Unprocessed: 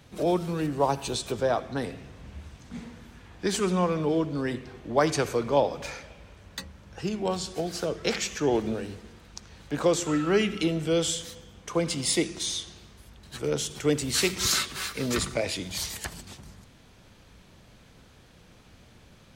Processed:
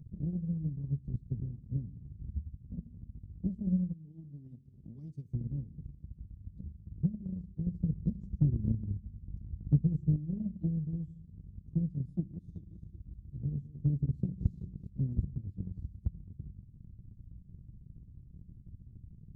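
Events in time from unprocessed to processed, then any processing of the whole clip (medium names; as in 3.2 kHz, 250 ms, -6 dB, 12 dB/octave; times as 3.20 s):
3.93–5.33 s: tilt EQ +4.5 dB/octave
7.66–10.16 s: tone controls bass +7 dB, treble +6 dB
12.09–14.89 s: backward echo that repeats 189 ms, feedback 59%, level -8 dB
whole clip: inverse Chebyshev low-pass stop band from 580 Hz, stop band 60 dB; upward compressor, threshold -46 dBFS; transient shaper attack +10 dB, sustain -4 dB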